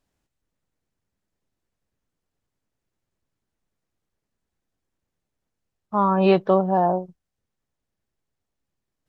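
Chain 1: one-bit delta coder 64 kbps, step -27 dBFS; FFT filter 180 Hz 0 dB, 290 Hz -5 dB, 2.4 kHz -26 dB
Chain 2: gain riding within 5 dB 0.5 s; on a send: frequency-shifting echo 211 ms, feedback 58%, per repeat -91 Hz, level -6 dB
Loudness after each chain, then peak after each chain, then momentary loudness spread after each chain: -31.0 LUFS, -21.5 LUFS; -13.0 dBFS, -6.0 dBFS; 20 LU, 17 LU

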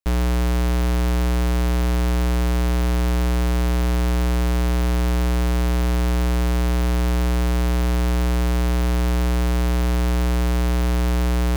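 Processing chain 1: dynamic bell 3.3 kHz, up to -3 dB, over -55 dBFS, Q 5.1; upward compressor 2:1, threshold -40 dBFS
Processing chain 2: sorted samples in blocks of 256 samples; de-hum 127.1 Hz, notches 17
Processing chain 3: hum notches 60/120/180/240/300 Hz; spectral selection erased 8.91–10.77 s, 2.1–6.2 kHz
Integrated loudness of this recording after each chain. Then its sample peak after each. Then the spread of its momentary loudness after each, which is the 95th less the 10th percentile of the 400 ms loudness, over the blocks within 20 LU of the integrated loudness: -21.5 LUFS, -20.5 LUFS, -28.5 LUFS; -17.5 dBFS, -16.0 dBFS, -15.0 dBFS; 0 LU, 0 LU, 1 LU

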